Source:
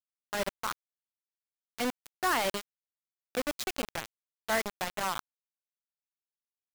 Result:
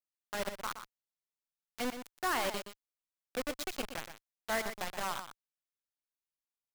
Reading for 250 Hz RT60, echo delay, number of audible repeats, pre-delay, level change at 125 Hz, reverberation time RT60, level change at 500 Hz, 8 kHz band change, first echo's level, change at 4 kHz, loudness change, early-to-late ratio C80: no reverb audible, 121 ms, 1, no reverb audible, −4.5 dB, no reverb audible, −4.0 dB, −4.0 dB, −9.5 dB, −4.0 dB, −4.0 dB, no reverb audible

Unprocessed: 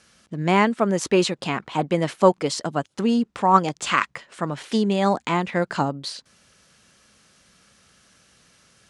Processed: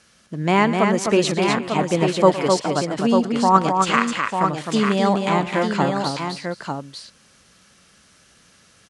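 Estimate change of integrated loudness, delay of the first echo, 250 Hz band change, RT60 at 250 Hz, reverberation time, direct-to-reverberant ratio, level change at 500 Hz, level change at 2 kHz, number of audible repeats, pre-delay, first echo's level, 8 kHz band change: +2.5 dB, 112 ms, +3.0 dB, no reverb audible, no reverb audible, no reverb audible, +3.0 dB, +3.0 dB, 4, no reverb audible, −16.0 dB, +3.0 dB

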